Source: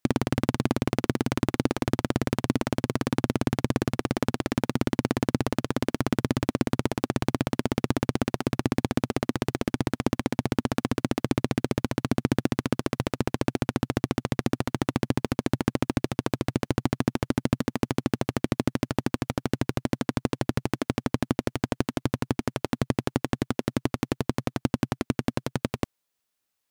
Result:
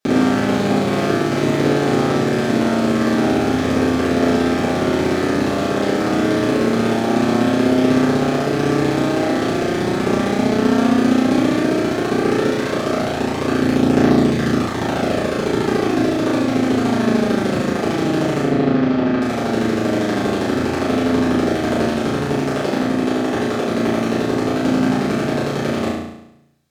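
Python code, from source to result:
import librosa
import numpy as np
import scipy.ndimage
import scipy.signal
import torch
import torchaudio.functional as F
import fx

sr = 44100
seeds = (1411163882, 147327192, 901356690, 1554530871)

y = fx.highpass(x, sr, hz=210.0, slope=6)
y = fx.high_shelf(y, sr, hz=11000.0, db=-12.0)
y = fx.notch(y, sr, hz=980.0, q=9.7)
y = fx.air_absorb(y, sr, metres=200.0, at=(18.44, 19.22))
y = fx.level_steps(y, sr, step_db=14, at=(22.78, 23.23), fade=0.02)
y = fx.room_flutter(y, sr, wall_m=6.0, rt60_s=0.81)
y = fx.room_shoebox(y, sr, seeds[0], volume_m3=41.0, walls='mixed', distance_m=1.6)
y = F.gain(torch.from_numpy(y), -1.0).numpy()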